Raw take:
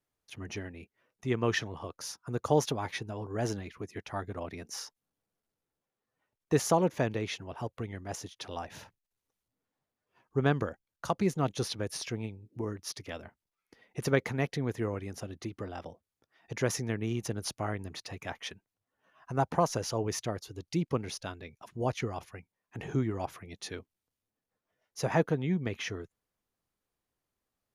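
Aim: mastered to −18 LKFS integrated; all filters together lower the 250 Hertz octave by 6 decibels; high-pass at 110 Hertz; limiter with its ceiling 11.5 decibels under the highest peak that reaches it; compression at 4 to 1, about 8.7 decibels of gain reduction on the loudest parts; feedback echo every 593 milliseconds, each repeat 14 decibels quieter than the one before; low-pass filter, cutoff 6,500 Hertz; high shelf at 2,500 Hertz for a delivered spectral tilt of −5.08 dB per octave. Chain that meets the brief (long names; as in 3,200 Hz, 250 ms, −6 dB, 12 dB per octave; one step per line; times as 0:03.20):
high-pass filter 110 Hz
low-pass filter 6,500 Hz
parametric band 250 Hz −8.5 dB
high-shelf EQ 2,500 Hz −7 dB
downward compressor 4 to 1, threshold −33 dBFS
brickwall limiter −30 dBFS
repeating echo 593 ms, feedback 20%, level −14 dB
level +25.5 dB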